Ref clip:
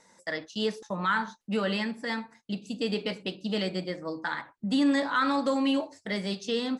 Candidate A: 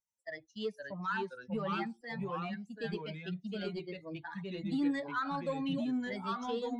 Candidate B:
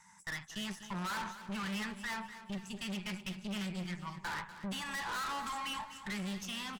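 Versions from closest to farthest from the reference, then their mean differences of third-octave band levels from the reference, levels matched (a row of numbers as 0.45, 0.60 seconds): A, B; 8.5, 11.0 decibels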